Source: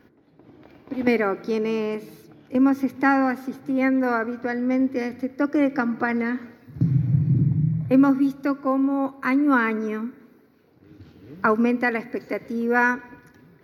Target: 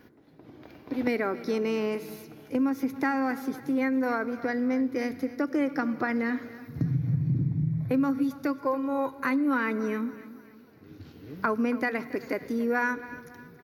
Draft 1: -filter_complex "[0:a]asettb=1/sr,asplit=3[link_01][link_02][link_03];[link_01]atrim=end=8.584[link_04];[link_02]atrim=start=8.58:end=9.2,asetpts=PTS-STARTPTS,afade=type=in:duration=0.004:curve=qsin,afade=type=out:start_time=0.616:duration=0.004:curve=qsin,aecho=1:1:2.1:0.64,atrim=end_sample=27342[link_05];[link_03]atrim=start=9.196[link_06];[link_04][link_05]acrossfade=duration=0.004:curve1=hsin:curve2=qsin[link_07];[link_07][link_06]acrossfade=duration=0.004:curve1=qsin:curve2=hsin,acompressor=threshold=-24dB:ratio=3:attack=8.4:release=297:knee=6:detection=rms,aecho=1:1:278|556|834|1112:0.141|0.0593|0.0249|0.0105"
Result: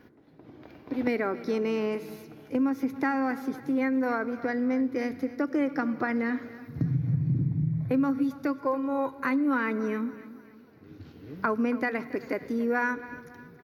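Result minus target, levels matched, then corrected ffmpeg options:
8,000 Hz band −4.5 dB
-filter_complex "[0:a]asettb=1/sr,asplit=3[link_01][link_02][link_03];[link_01]atrim=end=8.584[link_04];[link_02]atrim=start=8.58:end=9.2,asetpts=PTS-STARTPTS,afade=type=in:duration=0.004:curve=qsin,afade=type=out:start_time=0.616:duration=0.004:curve=qsin,aecho=1:1:2.1:0.64,atrim=end_sample=27342[link_05];[link_03]atrim=start=9.196[link_06];[link_04][link_05]acrossfade=duration=0.004:curve1=hsin:curve2=qsin[link_07];[link_07][link_06]acrossfade=duration=0.004:curve1=qsin:curve2=hsin,acompressor=threshold=-24dB:ratio=3:attack=8.4:release=297:knee=6:detection=rms,highshelf=frequency=4700:gain=6.5,aecho=1:1:278|556|834|1112:0.141|0.0593|0.0249|0.0105"

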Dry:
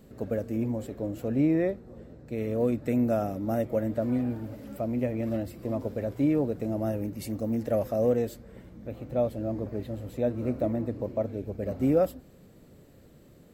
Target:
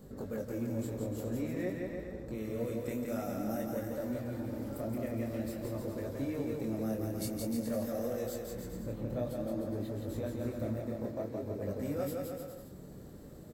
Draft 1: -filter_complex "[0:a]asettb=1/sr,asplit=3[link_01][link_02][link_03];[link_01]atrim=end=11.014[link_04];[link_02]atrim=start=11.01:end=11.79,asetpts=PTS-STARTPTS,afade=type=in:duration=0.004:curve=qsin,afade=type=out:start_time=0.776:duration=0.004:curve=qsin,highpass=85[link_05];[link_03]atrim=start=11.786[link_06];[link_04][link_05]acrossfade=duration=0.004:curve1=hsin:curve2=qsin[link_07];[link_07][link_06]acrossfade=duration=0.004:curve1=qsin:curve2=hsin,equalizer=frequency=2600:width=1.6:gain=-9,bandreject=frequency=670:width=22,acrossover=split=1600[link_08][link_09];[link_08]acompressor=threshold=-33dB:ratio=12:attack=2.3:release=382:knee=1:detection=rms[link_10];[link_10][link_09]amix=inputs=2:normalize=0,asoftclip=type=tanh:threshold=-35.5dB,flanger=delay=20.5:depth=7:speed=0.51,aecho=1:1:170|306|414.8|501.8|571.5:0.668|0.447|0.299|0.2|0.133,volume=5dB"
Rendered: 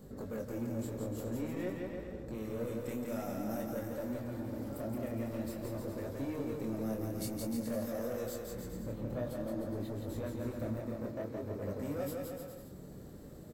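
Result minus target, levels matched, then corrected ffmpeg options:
soft clipping: distortion +12 dB
-filter_complex "[0:a]asettb=1/sr,asplit=3[link_01][link_02][link_03];[link_01]atrim=end=11.014[link_04];[link_02]atrim=start=11.01:end=11.79,asetpts=PTS-STARTPTS,afade=type=in:duration=0.004:curve=qsin,afade=type=out:start_time=0.776:duration=0.004:curve=qsin,highpass=85[link_05];[link_03]atrim=start=11.786[link_06];[link_04][link_05]acrossfade=duration=0.004:curve1=hsin:curve2=qsin[link_07];[link_07][link_06]acrossfade=duration=0.004:curve1=qsin:curve2=hsin,equalizer=frequency=2600:width=1.6:gain=-9,bandreject=frequency=670:width=22,acrossover=split=1600[link_08][link_09];[link_08]acompressor=threshold=-33dB:ratio=12:attack=2.3:release=382:knee=1:detection=rms[link_10];[link_10][link_09]amix=inputs=2:normalize=0,asoftclip=type=tanh:threshold=-27.5dB,flanger=delay=20.5:depth=7:speed=0.51,aecho=1:1:170|306|414.8|501.8|571.5:0.668|0.447|0.299|0.2|0.133,volume=5dB"

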